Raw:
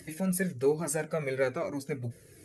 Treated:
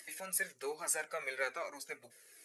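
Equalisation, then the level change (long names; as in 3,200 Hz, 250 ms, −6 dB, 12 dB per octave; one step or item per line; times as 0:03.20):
high-pass filter 990 Hz 12 dB per octave
0.0 dB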